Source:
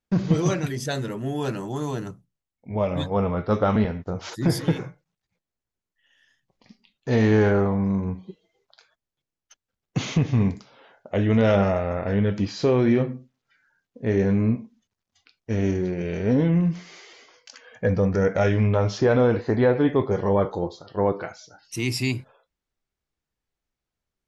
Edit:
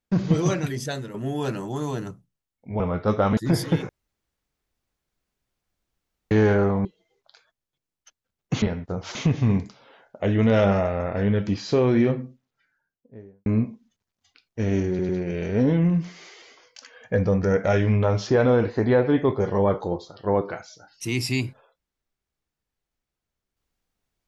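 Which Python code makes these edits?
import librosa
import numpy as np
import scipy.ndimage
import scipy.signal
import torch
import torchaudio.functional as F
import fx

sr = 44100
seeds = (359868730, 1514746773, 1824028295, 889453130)

y = fx.studio_fade_out(x, sr, start_s=13.07, length_s=1.3)
y = fx.edit(y, sr, fx.fade_out_to(start_s=0.78, length_s=0.36, floor_db=-9.0),
    fx.cut(start_s=2.8, length_s=0.43),
    fx.move(start_s=3.8, length_s=0.53, to_s=10.06),
    fx.room_tone_fill(start_s=4.85, length_s=2.42),
    fx.cut(start_s=7.81, length_s=0.48),
    fx.stutter(start_s=15.8, slice_s=0.1, count=3), tone=tone)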